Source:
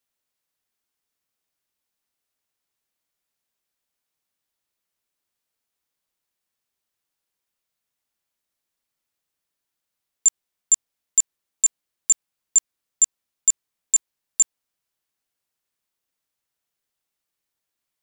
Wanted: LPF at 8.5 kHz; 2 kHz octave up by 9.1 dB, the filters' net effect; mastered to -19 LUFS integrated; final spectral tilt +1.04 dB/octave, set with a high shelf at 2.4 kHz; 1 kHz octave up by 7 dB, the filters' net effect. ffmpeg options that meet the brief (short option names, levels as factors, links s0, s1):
-af "lowpass=8500,equalizer=f=1000:t=o:g=5.5,equalizer=f=2000:t=o:g=7.5,highshelf=f=2400:g=4.5,volume=0.891"